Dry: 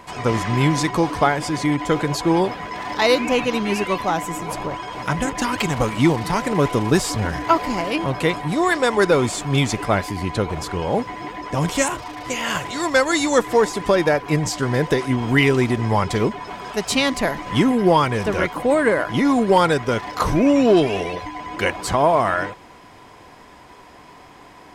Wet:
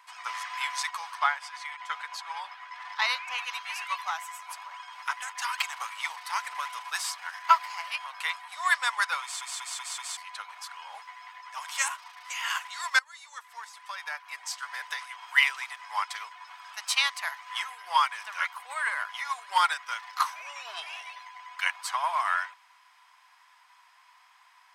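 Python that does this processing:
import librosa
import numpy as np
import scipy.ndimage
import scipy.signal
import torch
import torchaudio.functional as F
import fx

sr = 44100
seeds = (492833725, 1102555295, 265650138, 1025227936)

y = fx.high_shelf(x, sr, hz=6600.0, db=-10.0, at=(1.15, 3.38))
y = fx.edit(y, sr, fx.stutter_over(start_s=9.22, slice_s=0.19, count=5),
    fx.fade_in_from(start_s=12.99, length_s=1.81, floor_db=-19.5), tone=tone)
y = scipy.signal.sosfilt(scipy.signal.butter(6, 960.0, 'highpass', fs=sr, output='sos'), y)
y = fx.notch(y, sr, hz=7100.0, q=13.0)
y = fx.upward_expand(y, sr, threshold_db=-35.0, expansion=1.5)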